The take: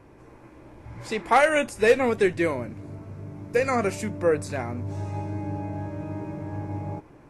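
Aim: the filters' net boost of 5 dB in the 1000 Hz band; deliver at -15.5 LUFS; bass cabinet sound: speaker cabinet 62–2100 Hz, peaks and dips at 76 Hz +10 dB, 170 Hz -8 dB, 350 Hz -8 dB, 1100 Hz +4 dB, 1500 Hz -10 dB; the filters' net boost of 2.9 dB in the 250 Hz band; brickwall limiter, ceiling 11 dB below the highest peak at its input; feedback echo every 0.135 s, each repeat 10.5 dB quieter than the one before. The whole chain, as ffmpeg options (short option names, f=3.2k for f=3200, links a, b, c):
-af "equalizer=f=250:t=o:g=7.5,equalizer=f=1k:t=o:g=6,alimiter=limit=-15dB:level=0:latency=1,highpass=f=62:w=0.5412,highpass=f=62:w=1.3066,equalizer=f=76:t=q:w=4:g=10,equalizer=f=170:t=q:w=4:g=-8,equalizer=f=350:t=q:w=4:g=-8,equalizer=f=1.1k:t=q:w=4:g=4,equalizer=f=1.5k:t=q:w=4:g=-10,lowpass=f=2.1k:w=0.5412,lowpass=f=2.1k:w=1.3066,aecho=1:1:135|270|405:0.299|0.0896|0.0269,volume=13dB"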